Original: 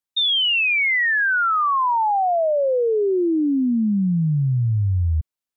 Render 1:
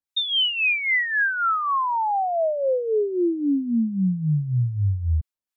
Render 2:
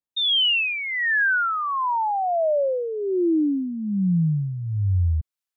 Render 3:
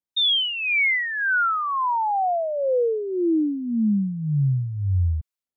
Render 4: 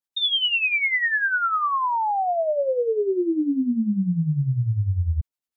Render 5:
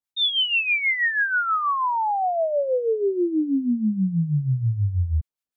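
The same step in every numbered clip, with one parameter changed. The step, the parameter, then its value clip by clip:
harmonic tremolo, rate: 3.7, 1.2, 1.8, 10, 6.2 Hz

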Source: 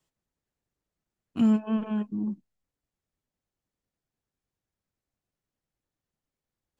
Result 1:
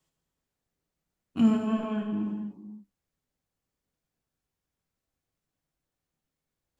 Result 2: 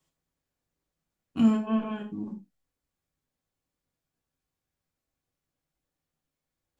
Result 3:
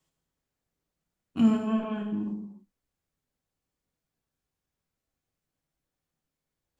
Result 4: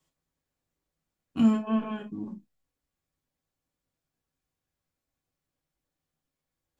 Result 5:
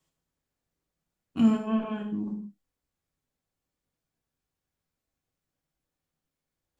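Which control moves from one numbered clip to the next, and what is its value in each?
non-linear reverb, gate: 530, 120, 330, 80, 200 ms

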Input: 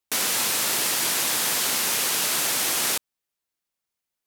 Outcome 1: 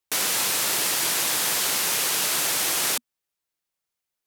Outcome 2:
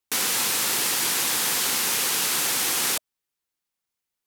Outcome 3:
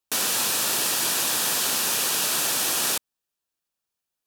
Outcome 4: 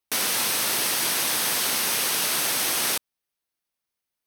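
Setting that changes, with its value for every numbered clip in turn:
notch, frequency: 240, 630, 2100, 7200 Hz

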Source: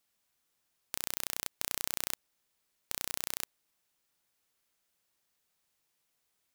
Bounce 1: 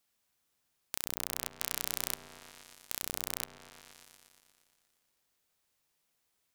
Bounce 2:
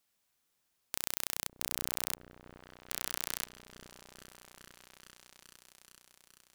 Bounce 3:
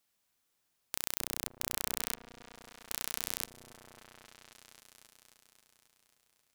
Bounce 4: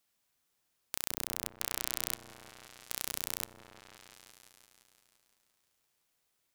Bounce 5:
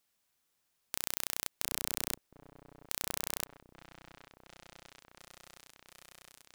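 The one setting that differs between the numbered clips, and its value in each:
repeats that get brighter, time: 0.118, 0.424, 0.269, 0.172, 0.712 s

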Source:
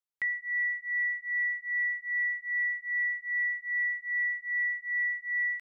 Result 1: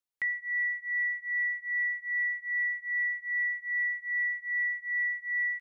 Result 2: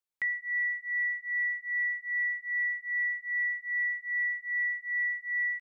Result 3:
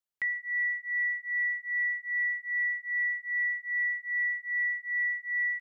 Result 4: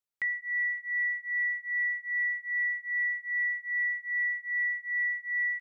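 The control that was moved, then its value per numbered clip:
echo, time: 95, 371, 143, 562 ms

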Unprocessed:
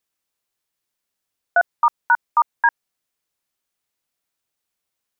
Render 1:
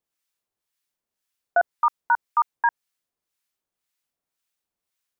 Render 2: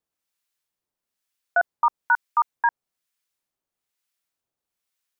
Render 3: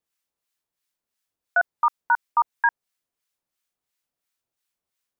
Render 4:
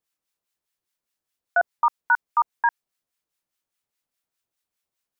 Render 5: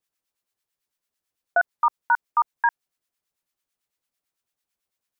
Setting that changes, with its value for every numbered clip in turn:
harmonic tremolo, rate: 1.9, 1.1, 2.9, 4.9, 9 Hz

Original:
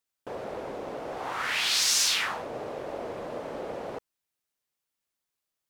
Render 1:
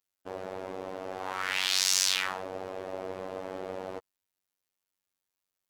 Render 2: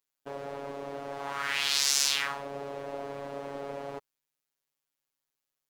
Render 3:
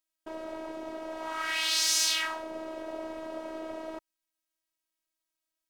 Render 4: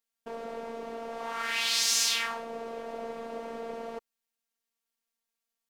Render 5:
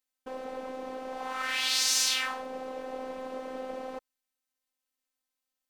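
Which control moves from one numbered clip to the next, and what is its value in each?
robotiser, frequency: 94, 140, 320, 230, 260 Hz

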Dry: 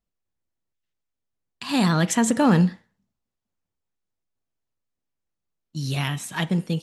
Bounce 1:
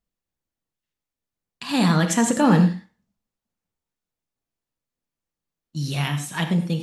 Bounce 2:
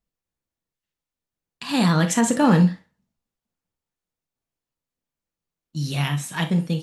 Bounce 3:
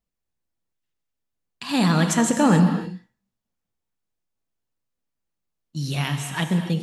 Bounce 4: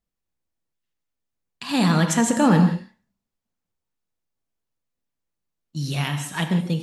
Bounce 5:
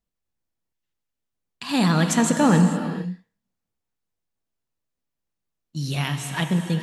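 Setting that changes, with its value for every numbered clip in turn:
non-linear reverb, gate: 130, 80, 320, 200, 490 ms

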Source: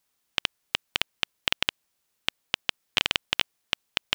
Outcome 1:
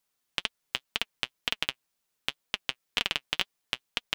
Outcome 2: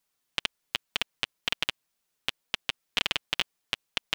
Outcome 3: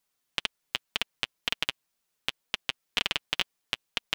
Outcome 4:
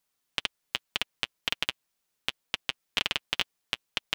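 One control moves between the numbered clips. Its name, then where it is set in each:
flange, regen: +46, -3, +17, -25%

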